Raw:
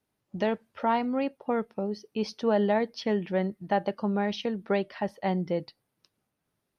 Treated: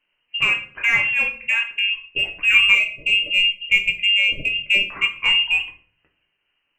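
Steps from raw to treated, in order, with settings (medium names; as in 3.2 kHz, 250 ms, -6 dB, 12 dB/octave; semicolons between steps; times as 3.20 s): frequency inversion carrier 3 kHz; in parallel at -8 dB: hard clipper -22 dBFS, distortion -13 dB; on the sum: time-frequency box 2.72–4.85 s, 680–2000 Hz -26 dB; simulated room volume 40 m³, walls mixed, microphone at 0.42 m; trim +4.5 dB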